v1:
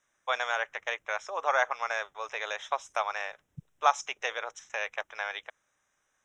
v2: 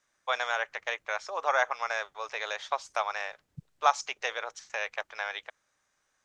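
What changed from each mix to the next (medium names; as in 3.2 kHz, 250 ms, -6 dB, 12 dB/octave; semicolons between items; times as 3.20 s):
master: remove Butterworth band-stop 4.5 kHz, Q 3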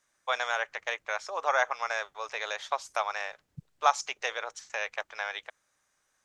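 first voice: remove low-pass 7.1 kHz 12 dB/octave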